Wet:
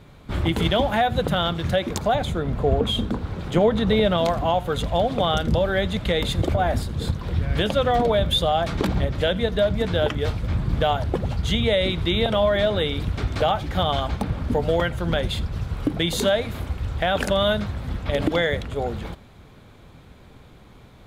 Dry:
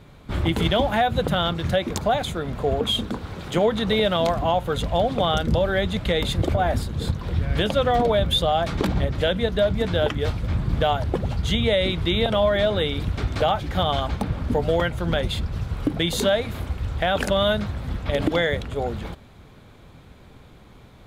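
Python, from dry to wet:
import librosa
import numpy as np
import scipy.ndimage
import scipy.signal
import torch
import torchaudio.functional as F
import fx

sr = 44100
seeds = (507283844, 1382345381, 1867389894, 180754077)

y = fx.tilt_eq(x, sr, slope=-1.5, at=(2.15, 4.18))
y = y + 10.0 ** (-22.0 / 20.0) * np.pad(y, (int(84 * sr / 1000.0), 0))[:len(y)]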